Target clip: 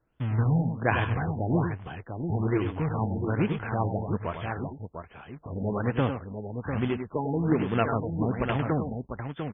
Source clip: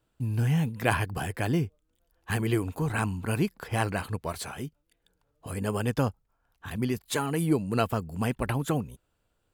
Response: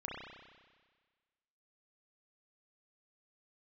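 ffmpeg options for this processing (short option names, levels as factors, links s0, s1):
-af "acrusher=bits=2:mode=log:mix=0:aa=0.000001,aecho=1:1:90|101|698:0.141|0.398|0.447,afftfilt=real='re*lt(b*sr/1024,870*pow(3600/870,0.5+0.5*sin(2*PI*1.2*pts/sr)))':imag='im*lt(b*sr/1024,870*pow(3600/870,0.5+0.5*sin(2*PI*1.2*pts/sr)))':win_size=1024:overlap=0.75"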